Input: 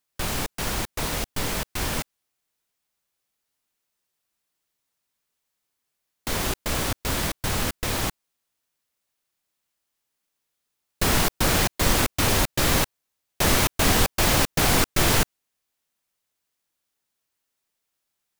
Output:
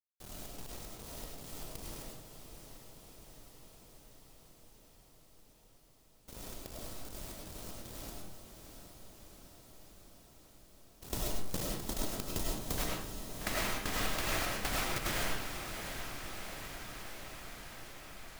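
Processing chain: bell 1800 Hz -11 dB 1.8 oct, from 12.78 s +4.5 dB; auto swell 0.119 s; level quantiser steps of 22 dB; limiter -17 dBFS, peak gain reduction 7 dB; compressor 8:1, threshold -34 dBFS, peak gain reduction 11 dB; crossover distortion -46.5 dBFS; diffused feedback echo 0.698 s, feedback 74%, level -8.5 dB; reverb RT60 0.60 s, pre-delay 60 ms, DRR -2.5 dB; gain +1 dB

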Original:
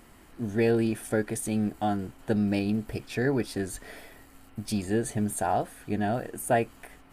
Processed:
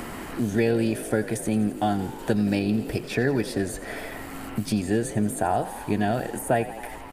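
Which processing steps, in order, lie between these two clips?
frequency-shifting echo 85 ms, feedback 63%, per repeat +47 Hz, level -16 dB; three-band squash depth 70%; gain +3 dB

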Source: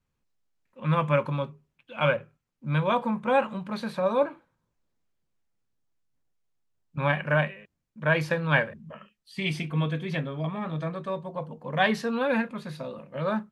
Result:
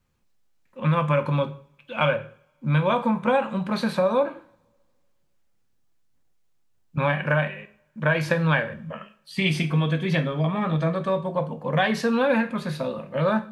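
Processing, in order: compressor 6:1, threshold -26 dBFS, peak gain reduction 9.5 dB; reverb, pre-delay 3 ms, DRR 9 dB; gain +7.5 dB

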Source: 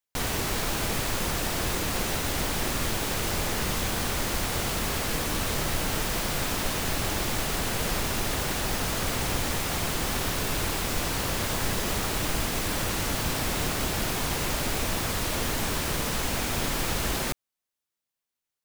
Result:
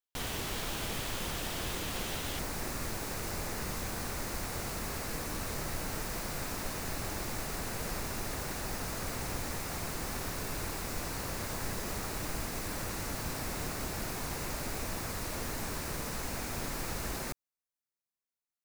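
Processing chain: bell 3200 Hz +4 dB 0.47 oct, from 2.39 s -8 dB; gain -8.5 dB

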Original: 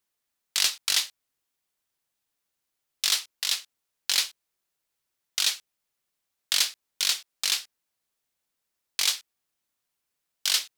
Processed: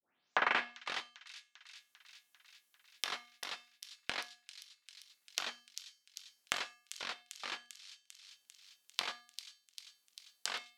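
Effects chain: tape start at the beginning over 0.98 s; transient shaper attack -1 dB, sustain -8 dB; Bessel high-pass 170 Hz; high shelf 7700 Hz +6.5 dB; treble ducked by the level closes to 1200 Hz, closed at -40 dBFS; resonator 240 Hz, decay 0.47 s, harmonics odd, mix 70%; thin delay 0.396 s, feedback 70%, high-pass 5100 Hz, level -4.5 dB; gain +10.5 dB

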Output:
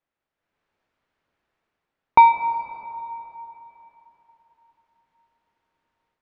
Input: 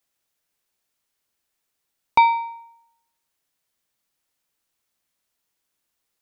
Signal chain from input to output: LPF 1900 Hz 12 dB/oct; AGC gain up to 10 dB; plate-style reverb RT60 3.7 s, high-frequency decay 0.65×, DRR 9 dB; gain -1 dB

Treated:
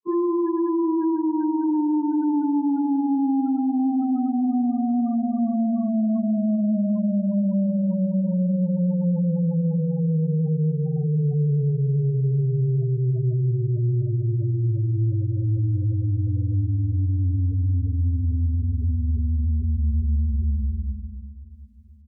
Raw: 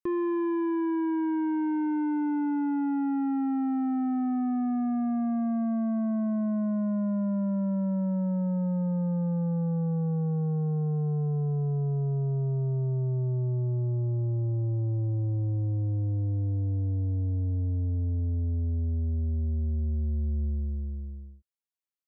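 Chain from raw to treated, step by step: grains 0.1 s, grains 20/s, spray 0.1 s, pitch spread up and down by 0 st; spectral gate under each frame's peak -20 dB strong; feedback echo 0.729 s, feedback 38%, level -19 dB; gain +7 dB

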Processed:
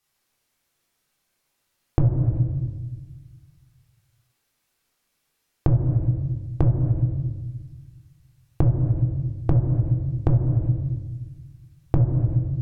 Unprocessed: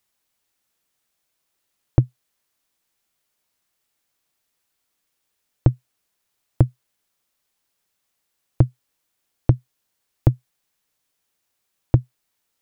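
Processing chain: shoebox room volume 810 m³, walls mixed, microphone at 3.6 m; treble ducked by the level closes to 1200 Hz, closed at -7 dBFS; compressor 5:1, threshold -12 dBFS, peak gain reduction 9 dB; gain -3.5 dB

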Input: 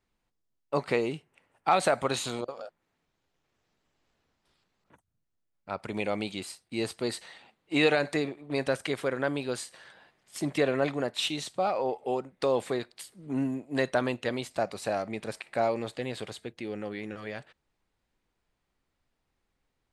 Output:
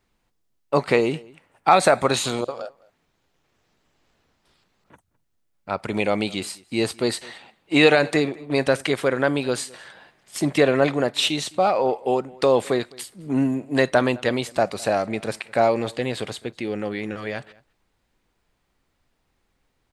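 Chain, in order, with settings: 1.68–2.14 notch 3000 Hz, Q 6.6; outdoor echo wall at 36 m, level -24 dB; gain +8.5 dB

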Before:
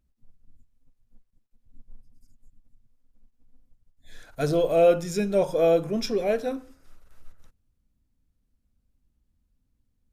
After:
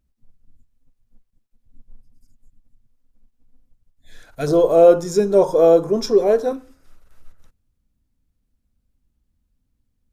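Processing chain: 4.47–6.53 fifteen-band EQ 400 Hz +10 dB, 1000 Hz +10 dB, 2500 Hz -9 dB, 6300 Hz +5 dB; gain +2 dB

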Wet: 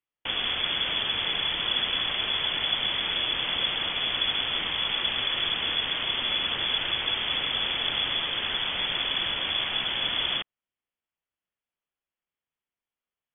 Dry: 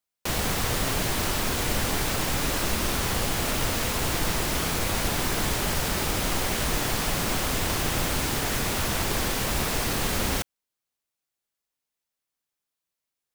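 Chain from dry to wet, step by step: inverted band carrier 3400 Hz; gain -2 dB

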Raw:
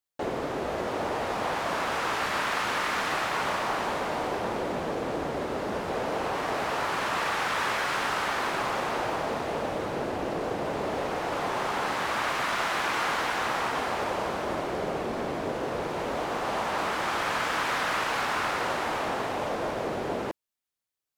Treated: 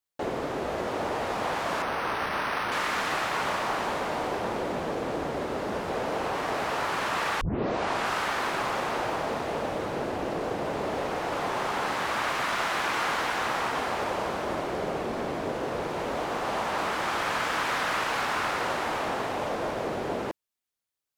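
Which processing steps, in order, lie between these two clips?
1.82–2.72 decimation joined by straight lines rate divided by 6×; 7.41 tape start 0.74 s

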